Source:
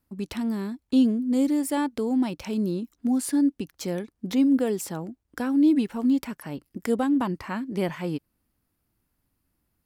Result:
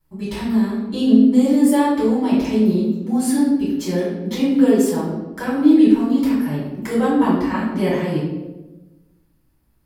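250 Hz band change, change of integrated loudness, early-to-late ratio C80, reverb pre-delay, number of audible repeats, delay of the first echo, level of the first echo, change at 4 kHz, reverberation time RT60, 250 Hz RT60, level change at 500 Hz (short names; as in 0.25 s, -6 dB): +8.0 dB, +8.0 dB, 3.5 dB, 3 ms, none, none, none, +7.0 dB, 1.1 s, 1.4 s, +9.5 dB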